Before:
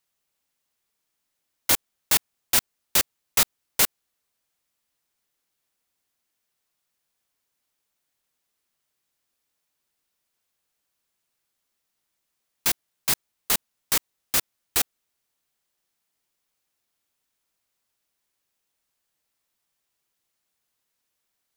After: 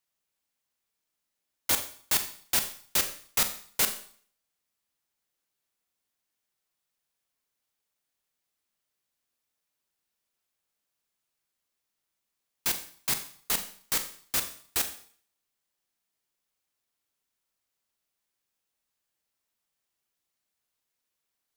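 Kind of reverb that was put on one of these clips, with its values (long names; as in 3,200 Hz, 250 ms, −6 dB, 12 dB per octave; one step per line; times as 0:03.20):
four-comb reverb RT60 0.51 s, combs from 29 ms, DRR 7.5 dB
level −5.5 dB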